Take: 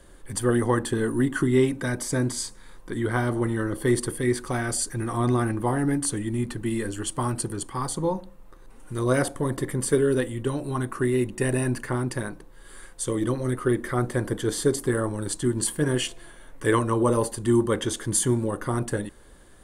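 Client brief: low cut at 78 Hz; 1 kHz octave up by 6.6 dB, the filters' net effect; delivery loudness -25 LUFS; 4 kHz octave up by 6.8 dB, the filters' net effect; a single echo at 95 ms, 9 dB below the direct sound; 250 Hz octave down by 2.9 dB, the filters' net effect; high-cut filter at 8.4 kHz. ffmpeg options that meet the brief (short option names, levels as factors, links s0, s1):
-af "highpass=78,lowpass=8400,equalizer=f=250:t=o:g=-4.5,equalizer=f=1000:t=o:g=7.5,equalizer=f=4000:t=o:g=8.5,aecho=1:1:95:0.355"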